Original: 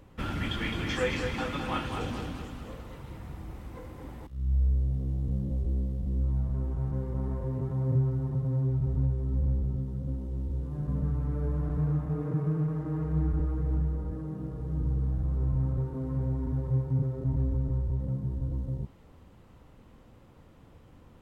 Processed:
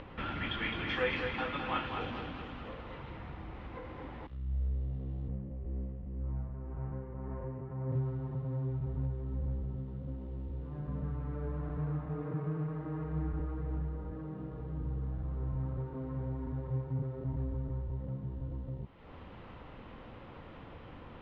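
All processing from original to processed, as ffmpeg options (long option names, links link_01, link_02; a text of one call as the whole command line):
ffmpeg -i in.wav -filter_complex "[0:a]asettb=1/sr,asplit=3[link_01][link_02][link_03];[link_01]atrim=end=5.284[link_04];[link_02]atrim=start=5.28:end=7.92,asetpts=PTS-STARTPTS,afade=type=in:duration=0.004:curve=qsin,afade=type=out:start_time=2.636:duration=0.004:curve=qsin,lowpass=frequency=2500:width=0.5412,lowpass=frequency=2500:width=1.3066,tremolo=f=1.9:d=0.44[link_05];[link_03]atrim=start=7.916[link_06];[link_04][link_05]acrossfade=duration=0.004:curve1=hsin:curve2=qsin[link_07];[link_07][link_06]acrossfade=duration=0.004:curve1=qsin:curve2=hsin,lowshelf=frequency=410:gain=-8.5,acompressor=mode=upward:threshold=-37dB:ratio=2.5,lowpass=frequency=3400:width=0.5412,lowpass=frequency=3400:width=1.3066" out.wav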